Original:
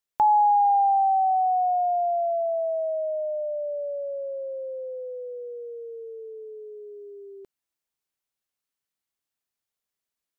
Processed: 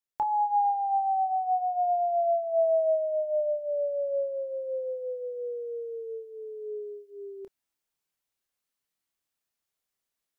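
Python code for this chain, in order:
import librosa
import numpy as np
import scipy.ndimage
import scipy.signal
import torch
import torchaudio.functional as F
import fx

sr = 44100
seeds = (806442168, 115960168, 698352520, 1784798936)

y = fx.rider(x, sr, range_db=4, speed_s=0.5)
y = fx.chorus_voices(y, sr, voices=6, hz=0.32, base_ms=27, depth_ms=4.0, mix_pct=30)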